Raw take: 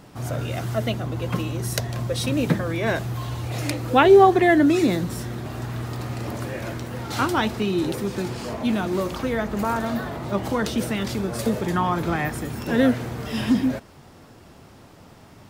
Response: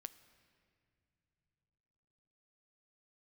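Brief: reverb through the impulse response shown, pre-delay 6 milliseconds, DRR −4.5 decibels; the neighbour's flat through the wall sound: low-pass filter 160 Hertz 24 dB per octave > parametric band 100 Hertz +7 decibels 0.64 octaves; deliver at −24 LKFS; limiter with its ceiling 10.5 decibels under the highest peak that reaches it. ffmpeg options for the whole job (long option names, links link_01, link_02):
-filter_complex "[0:a]alimiter=limit=-13dB:level=0:latency=1,asplit=2[link_01][link_02];[1:a]atrim=start_sample=2205,adelay=6[link_03];[link_02][link_03]afir=irnorm=-1:irlink=0,volume=10dB[link_04];[link_01][link_04]amix=inputs=2:normalize=0,lowpass=frequency=160:width=0.5412,lowpass=frequency=160:width=1.3066,equalizer=frequency=100:width_type=o:width=0.64:gain=7,volume=1.5dB"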